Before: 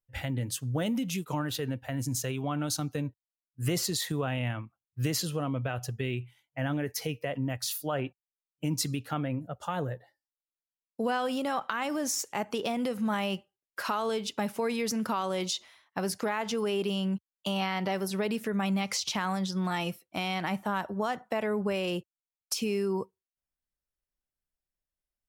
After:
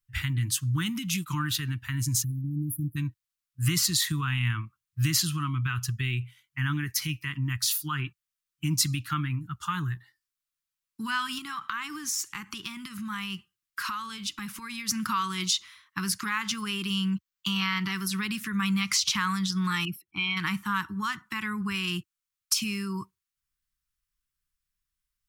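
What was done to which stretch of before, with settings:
2.24–2.97 spectral delete 370–10000 Hz
11.38–14.89 compressor 2.5:1, threshold -35 dBFS
17.1–17.84 bell 10000 Hz -11 dB 0.3 oct
19.85–20.37 formant sharpening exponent 2
whole clip: Chebyshev band-stop 300–1100 Hz, order 3; bell 260 Hz -14 dB 0.48 oct; gain +7 dB

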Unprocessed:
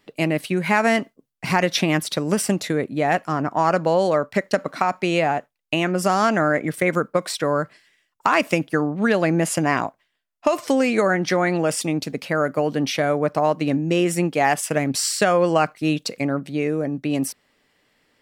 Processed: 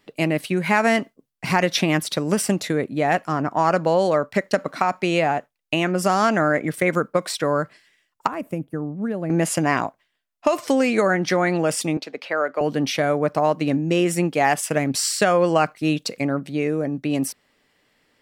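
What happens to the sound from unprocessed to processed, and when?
8.27–9.3 EQ curve 100 Hz 0 dB, 600 Hz -10 dB, 900 Hz -13 dB, 5100 Hz -26 dB, 8500 Hz -16 dB, 12000 Hz -9 dB
11.97–12.61 three-band isolator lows -24 dB, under 350 Hz, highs -17 dB, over 5000 Hz

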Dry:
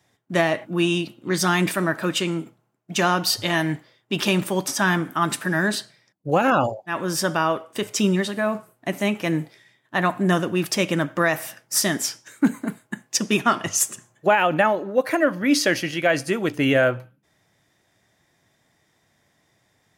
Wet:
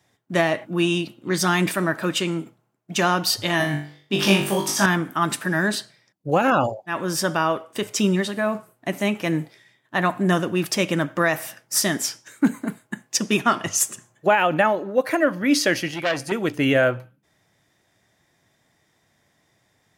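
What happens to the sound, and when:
3.58–4.86 flutter echo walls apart 3.5 m, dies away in 0.45 s
15.88–16.32 core saturation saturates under 1900 Hz

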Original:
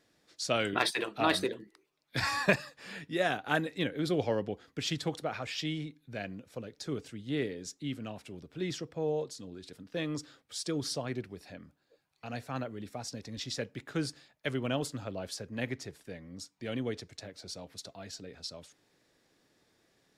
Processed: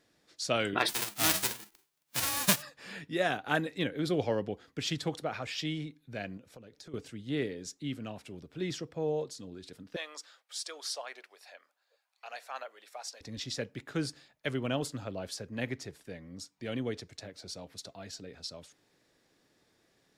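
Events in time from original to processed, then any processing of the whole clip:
0.88–2.61 spectral whitening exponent 0.1
6.37–6.94 compressor 4:1, threshold -48 dBFS
9.96–13.21 HPF 630 Hz 24 dB/oct

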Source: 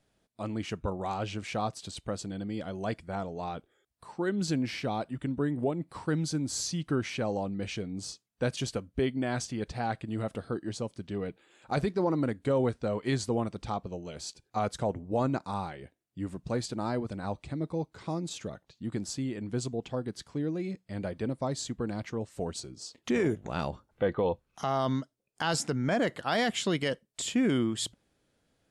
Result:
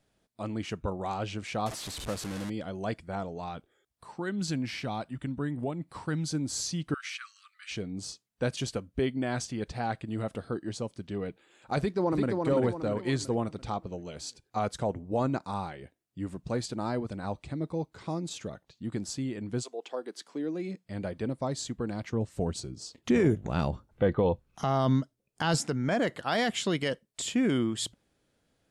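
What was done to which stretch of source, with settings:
1.66–2.5 delta modulation 64 kbps, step -33.5 dBFS
3.37–6.28 dynamic EQ 430 Hz, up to -6 dB, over -43 dBFS, Q 1.1
6.94–7.71 brick-wall FIR high-pass 1100 Hz
11.78–12.42 echo throw 0.34 s, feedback 45%, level -3.5 dB
19.61–20.83 HPF 500 Hz -> 150 Hz 24 dB/oct
22.13–25.59 low shelf 250 Hz +9 dB

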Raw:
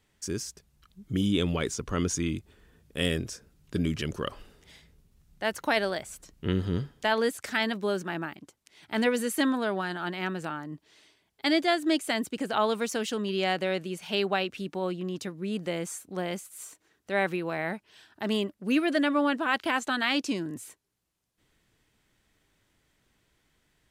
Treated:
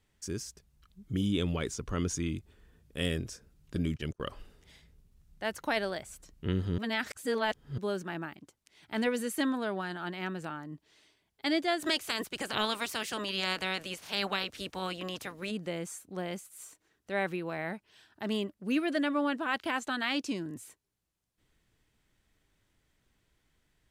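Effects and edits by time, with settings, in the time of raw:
3.75–4.22 gate -34 dBFS, range -34 dB
6.78–7.78 reverse
11.79–15.5 spectral limiter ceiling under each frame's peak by 21 dB
whole clip: low shelf 92 Hz +7 dB; gain -5 dB

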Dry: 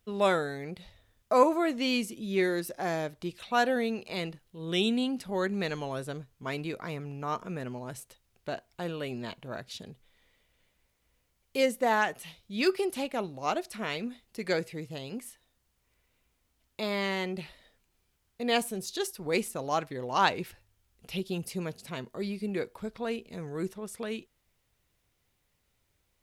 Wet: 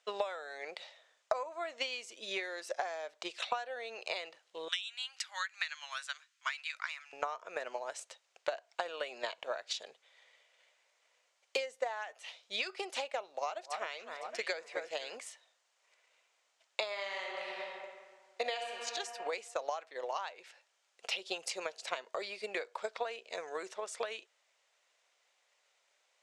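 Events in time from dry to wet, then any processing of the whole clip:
4.68–7.13 HPF 1400 Hz 24 dB/oct
13.31–15.17 echo with dull and thin repeats by turns 0.255 s, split 1800 Hz, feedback 59%, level -11 dB
16.88–18.65 reverb throw, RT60 1.7 s, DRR -0.5 dB
whole clip: Chebyshev band-pass 570–7400 Hz, order 3; compressor 12:1, threshold -42 dBFS; transient shaper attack +7 dB, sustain 0 dB; gain +5 dB

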